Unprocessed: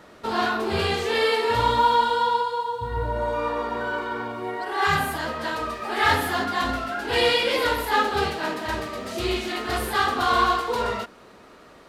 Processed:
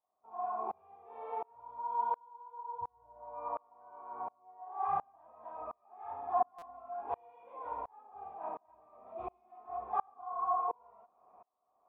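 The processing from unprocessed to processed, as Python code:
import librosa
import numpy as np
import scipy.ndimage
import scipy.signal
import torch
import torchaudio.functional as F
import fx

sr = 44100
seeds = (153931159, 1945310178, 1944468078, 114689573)

y = fx.formant_cascade(x, sr, vowel='a')
y = fx.buffer_glitch(y, sr, at_s=(6.58,), block=256, repeats=6)
y = fx.tremolo_decay(y, sr, direction='swelling', hz=1.4, depth_db=34)
y = F.gain(torch.from_numpy(y), 5.0).numpy()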